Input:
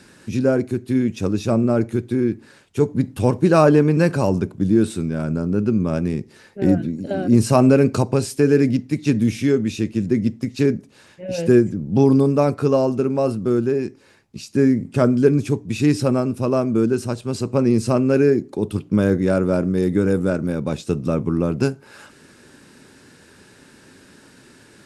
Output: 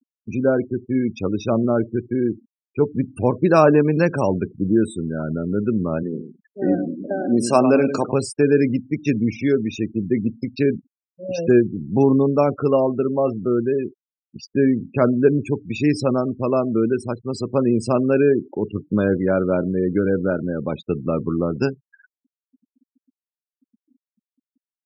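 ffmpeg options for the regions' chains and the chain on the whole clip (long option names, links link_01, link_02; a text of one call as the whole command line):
ffmpeg -i in.wav -filter_complex "[0:a]asettb=1/sr,asplit=3[link_01][link_02][link_03];[link_01]atrim=end=6.034[link_04];[link_02]atrim=start=6.03:end=8.12,asetpts=PTS-STARTPTS,afade=type=in:duration=0.004:curve=qsin,afade=type=out:start_time=2.086:duration=0.004:curve=qsin,highpass=210,aecho=1:1:101|202|303:0.355|0.0993|0.0278,atrim=end_sample=92169[link_05];[link_03]atrim=start=8.116[link_06];[link_04][link_05]acrossfade=duration=0.004:curve1=hsin:curve2=qsin[link_07];[link_07][link_06]acrossfade=duration=0.004:curve1=qsin:curve2=hsin,afftfilt=real='re*gte(hypot(re,im),0.0398)':imag='im*gte(hypot(re,im),0.0398)':win_size=1024:overlap=0.75,lowshelf=frequency=220:gain=-7.5,volume=1.5dB" out.wav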